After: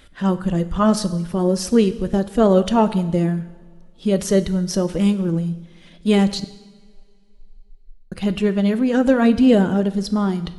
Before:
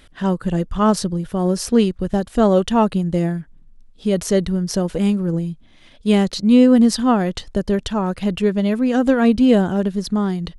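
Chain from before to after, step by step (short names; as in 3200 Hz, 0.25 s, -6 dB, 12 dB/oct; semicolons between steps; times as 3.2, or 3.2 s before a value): bin magnitudes rounded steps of 15 dB; 6.44–8.12 inverse Chebyshev band-stop 130–8700 Hz, stop band 80 dB; two-slope reverb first 0.92 s, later 2.8 s, from -18 dB, DRR 11.5 dB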